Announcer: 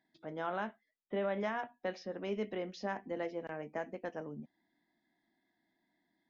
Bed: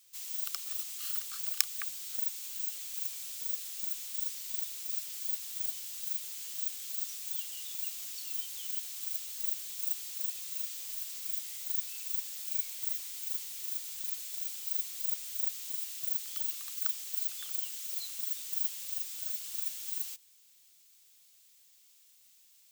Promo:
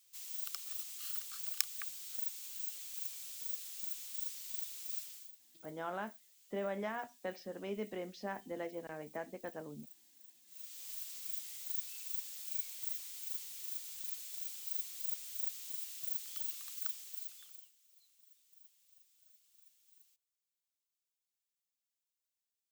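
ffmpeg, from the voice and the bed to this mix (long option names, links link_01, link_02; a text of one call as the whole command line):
ffmpeg -i stem1.wav -i stem2.wav -filter_complex "[0:a]adelay=5400,volume=-3.5dB[link_01];[1:a]volume=13dB,afade=type=out:start_time=5:duration=0.32:silence=0.11885,afade=type=in:start_time=10.46:duration=0.44:silence=0.11885,afade=type=out:start_time=16.72:duration=1.01:silence=0.0630957[link_02];[link_01][link_02]amix=inputs=2:normalize=0" out.wav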